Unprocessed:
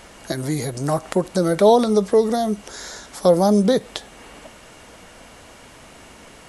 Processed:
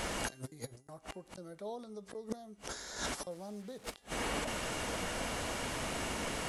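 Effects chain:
0:03.31–0:03.94: linear delta modulator 64 kbit/s, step −22.5 dBFS
gate with flip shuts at −14 dBFS, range −36 dB
compressor whose output falls as the input rises −41 dBFS, ratio −0.5
hum removal 396.7 Hz, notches 35
level +2 dB

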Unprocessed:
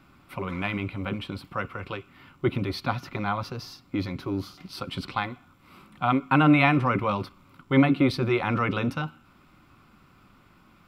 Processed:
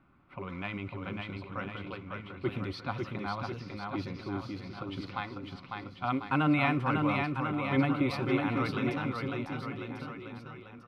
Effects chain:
low-pass that shuts in the quiet parts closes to 1,900 Hz, open at −21 dBFS
bouncing-ball delay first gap 550 ms, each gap 0.9×, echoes 5
level −8 dB

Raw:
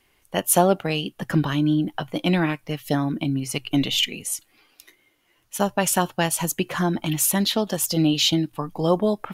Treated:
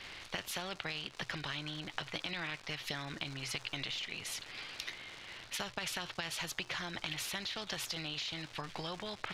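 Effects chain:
octave-band graphic EQ 125/250/500/1,000/2,000/4,000/8,000 Hz +3/−11/−4/−4/+10/+12/−11 dB
brickwall limiter −11 dBFS, peak gain reduction 11 dB
downward compressor 6 to 1, threshold −36 dBFS, peak gain reduction 18 dB
surface crackle 320 per second −48 dBFS
high-frequency loss of the air 93 metres
every bin compressed towards the loudest bin 2 to 1
level +2 dB

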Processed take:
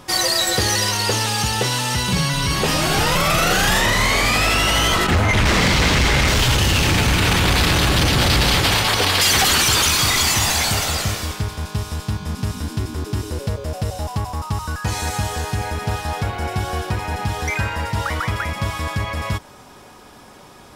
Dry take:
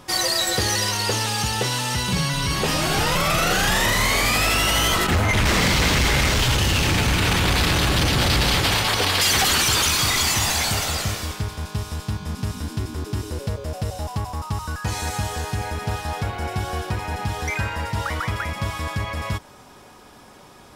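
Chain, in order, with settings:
0:03.80–0:06.28: high-shelf EQ 10,000 Hz −9 dB
level +3 dB

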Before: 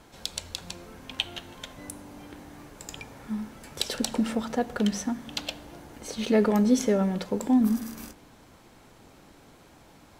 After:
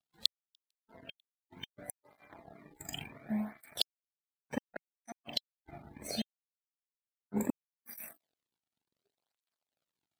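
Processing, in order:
drawn EQ curve 150 Hz 0 dB, 480 Hz −14 dB, 670 Hz +4 dB, 1,100 Hz −20 dB, 1,800 Hz −4 dB, 2,700 Hz −3 dB, 3,900 Hz +8 dB, 6,200 Hz −10 dB, 11,000 Hz +1 dB
flutter between parallel walls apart 7.3 metres, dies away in 0.37 s
gate with flip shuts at −23 dBFS, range −39 dB
dead-zone distortion −50 dBFS
noise reduction from a noise print of the clip's start 24 dB
through-zero flanger with one copy inverted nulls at 0.69 Hz, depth 2 ms
level +7.5 dB

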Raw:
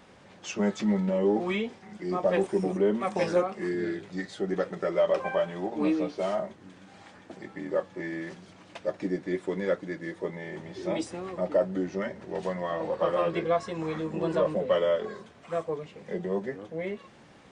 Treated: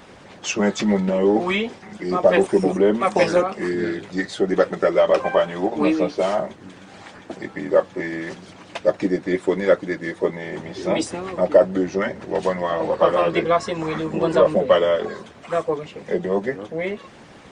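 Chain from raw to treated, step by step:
harmonic and percussive parts rebalanced percussive +7 dB
level +5.5 dB

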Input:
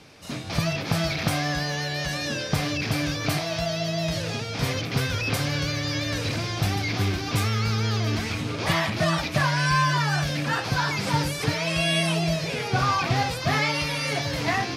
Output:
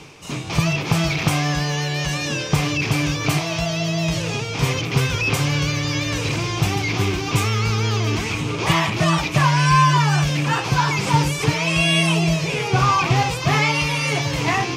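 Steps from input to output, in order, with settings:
EQ curve with evenly spaced ripples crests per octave 0.71, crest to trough 7 dB
reversed playback
upward compression, threshold −37 dBFS
reversed playback
level +4.5 dB

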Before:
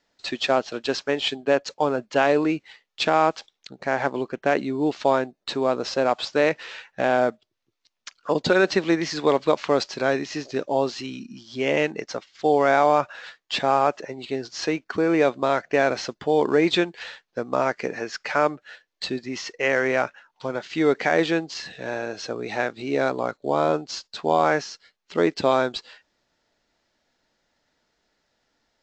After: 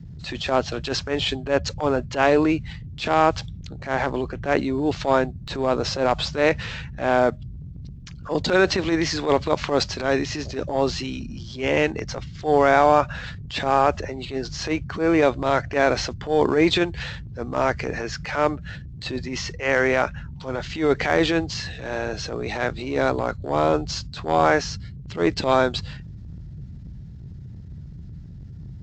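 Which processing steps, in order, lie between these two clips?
noise in a band 39–160 Hz −39 dBFS
transient designer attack −12 dB, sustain +2 dB
level +3 dB

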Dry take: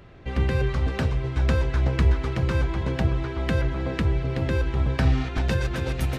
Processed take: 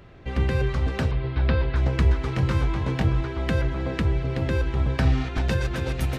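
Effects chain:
0:01.11–0:01.76: Butterworth low-pass 4,700 Hz 48 dB per octave
0:02.26–0:03.21: double-tracking delay 22 ms −5 dB

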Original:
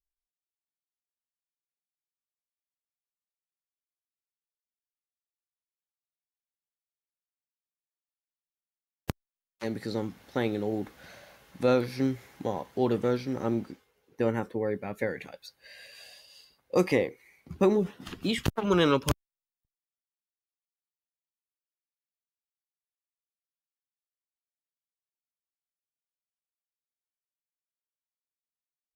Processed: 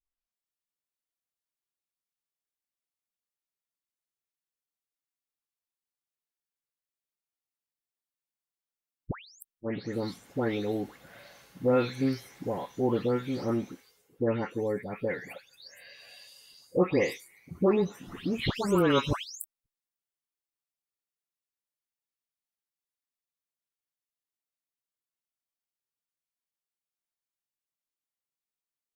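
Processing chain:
every frequency bin delayed by itself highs late, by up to 327 ms

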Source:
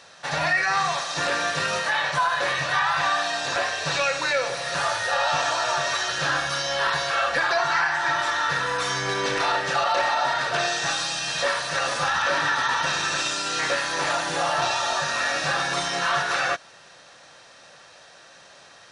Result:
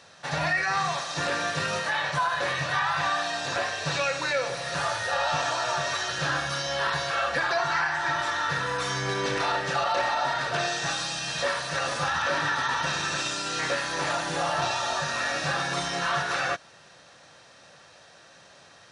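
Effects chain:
high-pass filter 53 Hz
low-shelf EQ 260 Hz +8 dB
level −4 dB

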